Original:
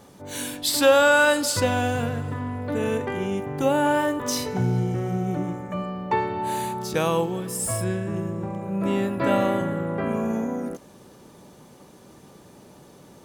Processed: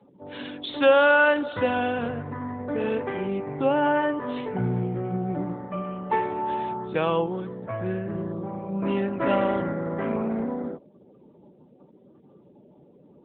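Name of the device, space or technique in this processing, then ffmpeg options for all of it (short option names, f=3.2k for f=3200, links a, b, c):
mobile call with aggressive noise cancelling: -af "highpass=f=160:p=1,afftdn=nr=26:nf=-45" -ar 8000 -c:a libopencore_amrnb -b:a 10200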